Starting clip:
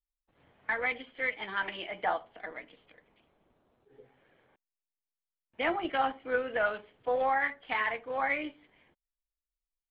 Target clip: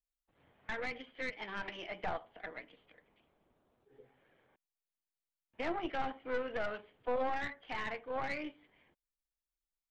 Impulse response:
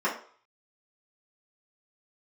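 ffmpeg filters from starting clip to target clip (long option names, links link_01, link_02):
-filter_complex "[0:a]acrossover=split=2700[link_01][link_02];[link_02]acompressor=threshold=-47dB:ratio=4:attack=1:release=60[link_03];[link_01][link_03]amix=inputs=2:normalize=0,aeval=exprs='(tanh(20*val(0)+0.7)-tanh(0.7))/20':channel_layout=same,acrossover=split=510[link_04][link_05];[link_05]alimiter=level_in=6.5dB:limit=-24dB:level=0:latency=1:release=87,volume=-6.5dB[link_06];[link_04][link_06]amix=inputs=2:normalize=0"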